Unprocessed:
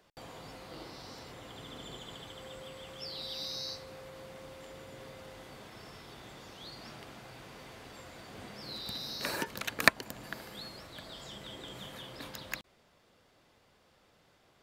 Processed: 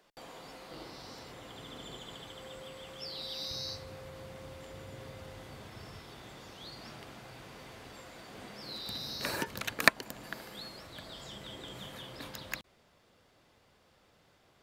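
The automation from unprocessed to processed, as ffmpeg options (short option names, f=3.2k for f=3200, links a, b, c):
-af "asetnsamples=n=441:p=0,asendcmd='0.71 equalizer g -2;3.51 equalizer g 9.5;5.99 equalizer g 1.5;7.98 equalizer g -5;8.9 equalizer g 5.5;9.72 equalizer g -4;10.86 equalizer g 2',equalizer=f=84:t=o:w=1.4:g=-13.5"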